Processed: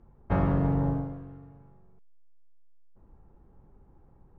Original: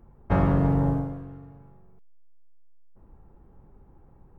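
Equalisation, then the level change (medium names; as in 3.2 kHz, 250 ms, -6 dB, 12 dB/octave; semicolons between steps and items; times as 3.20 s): distance through air 71 m; -3.5 dB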